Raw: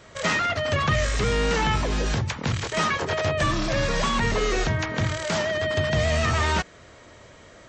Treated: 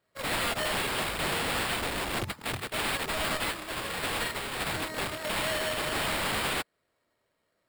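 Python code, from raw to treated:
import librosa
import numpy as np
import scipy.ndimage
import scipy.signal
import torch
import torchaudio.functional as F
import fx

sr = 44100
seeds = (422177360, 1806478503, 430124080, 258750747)

y = fx.highpass(x, sr, hz=fx.steps((0.0, 140.0), (3.37, 980.0), (4.6, 240.0)), slope=6)
y = fx.sample_hold(y, sr, seeds[0], rate_hz=6100.0, jitter_pct=0)
y = (np.mod(10.0 ** (24.0 / 20.0) * y + 1.0, 2.0) - 1.0) / 10.0 ** (24.0 / 20.0)
y = fx.upward_expand(y, sr, threshold_db=-46.0, expansion=2.5)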